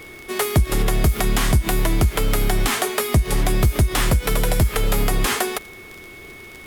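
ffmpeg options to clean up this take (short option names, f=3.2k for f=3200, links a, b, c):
-af "adeclick=t=4,bandreject=f=2.2k:w=30"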